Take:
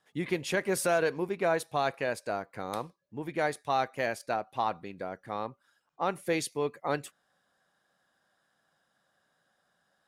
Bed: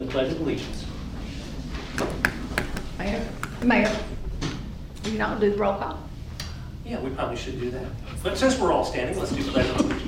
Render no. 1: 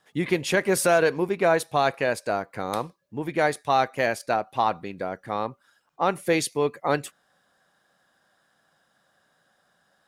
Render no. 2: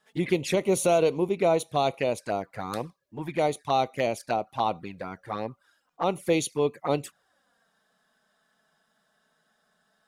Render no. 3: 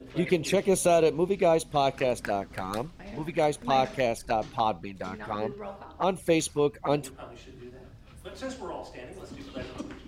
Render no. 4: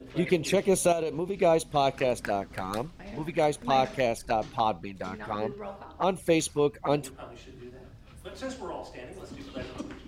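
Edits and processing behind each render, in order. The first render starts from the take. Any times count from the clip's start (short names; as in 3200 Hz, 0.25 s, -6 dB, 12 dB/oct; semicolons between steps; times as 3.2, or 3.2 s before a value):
gain +7 dB
envelope flanger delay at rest 4.7 ms, full sweep at -21.5 dBFS
add bed -16 dB
0.92–1.37 compressor, threshold -26 dBFS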